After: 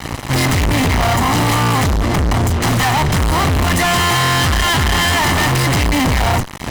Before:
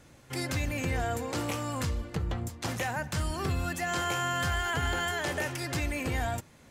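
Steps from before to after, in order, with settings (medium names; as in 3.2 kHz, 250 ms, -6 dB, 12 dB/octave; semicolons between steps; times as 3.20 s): comb filter that takes the minimum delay 1 ms; treble shelf 2.3 kHz -9 dB; in parallel at -0.5 dB: compression 6:1, threshold -44 dBFS, peak gain reduction 15.5 dB; on the sum: fuzz box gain 51 dB, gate -51 dBFS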